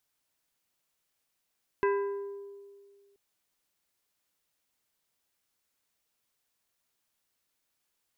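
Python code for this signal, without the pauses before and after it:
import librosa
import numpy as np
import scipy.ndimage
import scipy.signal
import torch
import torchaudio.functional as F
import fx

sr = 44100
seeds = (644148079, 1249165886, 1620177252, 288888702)

y = fx.strike_glass(sr, length_s=1.33, level_db=-23, body='plate', hz=400.0, decay_s=1.97, tilt_db=5, modes=5)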